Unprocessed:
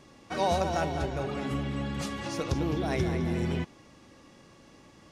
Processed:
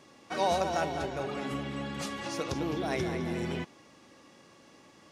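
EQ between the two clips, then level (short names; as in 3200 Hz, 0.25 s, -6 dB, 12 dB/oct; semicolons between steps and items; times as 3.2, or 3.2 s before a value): HPF 260 Hz 6 dB/oct; 0.0 dB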